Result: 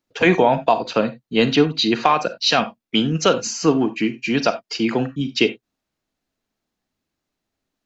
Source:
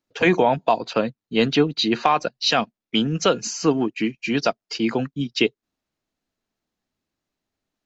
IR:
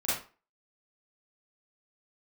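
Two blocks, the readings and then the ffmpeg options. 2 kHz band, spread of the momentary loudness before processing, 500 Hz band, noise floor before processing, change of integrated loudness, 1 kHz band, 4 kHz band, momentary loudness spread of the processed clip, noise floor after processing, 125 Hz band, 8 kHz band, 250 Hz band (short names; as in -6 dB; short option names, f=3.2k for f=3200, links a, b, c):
+2.5 dB, 6 LU, +2.5 dB, under -85 dBFS, +2.5 dB, +2.5 dB, +2.5 dB, 6 LU, -82 dBFS, +2.5 dB, n/a, +2.5 dB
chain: -filter_complex "[0:a]asplit=2[a][b];[1:a]atrim=start_sample=2205,atrim=end_sample=4410[c];[b][c]afir=irnorm=-1:irlink=0,volume=-17.5dB[d];[a][d]amix=inputs=2:normalize=0,volume=1.5dB"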